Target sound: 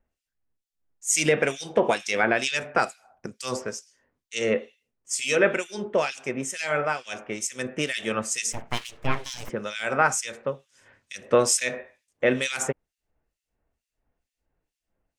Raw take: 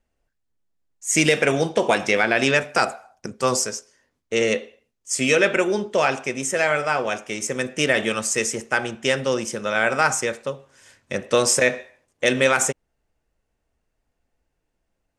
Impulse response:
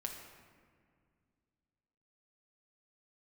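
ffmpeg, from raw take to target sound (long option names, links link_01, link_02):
-filter_complex "[0:a]asplit=3[link_01][link_02][link_03];[link_01]afade=type=out:start_time=8.52:duration=0.02[link_04];[link_02]aeval=exprs='abs(val(0))':channel_layout=same,afade=type=in:start_time=8.52:duration=0.02,afade=type=out:start_time=9.48:duration=0.02[link_05];[link_03]afade=type=in:start_time=9.48:duration=0.02[link_06];[link_04][link_05][link_06]amix=inputs=3:normalize=0,acrossover=split=2400[link_07][link_08];[link_07]aeval=exprs='val(0)*(1-1/2+1/2*cos(2*PI*2.2*n/s))':channel_layout=same[link_09];[link_08]aeval=exprs='val(0)*(1-1/2-1/2*cos(2*PI*2.2*n/s))':channel_layout=same[link_10];[link_09][link_10]amix=inputs=2:normalize=0"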